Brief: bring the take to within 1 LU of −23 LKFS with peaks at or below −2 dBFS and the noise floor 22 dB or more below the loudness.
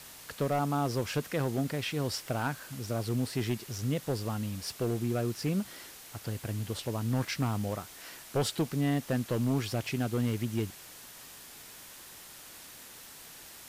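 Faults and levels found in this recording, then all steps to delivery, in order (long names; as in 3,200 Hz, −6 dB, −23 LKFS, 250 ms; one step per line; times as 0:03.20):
share of clipped samples 1.0%; peaks flattened at −23.0 dBFS; background noise floor −50 dBFS; target noise floor −55 dBFS; integrated loudness −32.5 LKFS; sample peak −23.0 dBFS; target loudness −23.0 LKFS
→ clipped peaks rebuilt −23 dBFS
noise reduction from a noise print 6 dB
level +9.5 dB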